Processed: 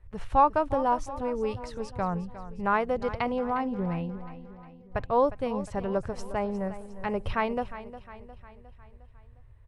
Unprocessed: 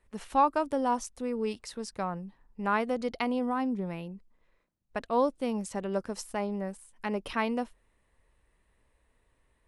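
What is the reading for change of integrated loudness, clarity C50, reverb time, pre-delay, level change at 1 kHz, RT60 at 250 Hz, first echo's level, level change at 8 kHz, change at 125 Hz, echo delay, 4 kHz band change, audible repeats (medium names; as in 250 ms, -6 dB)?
+2.5 dB, no reverb, no reverb, no reverb, +3.5 dB, no reverb, -14.0 dB, no reading, +6.5 dB, 357 ms, -3.0 dB, 4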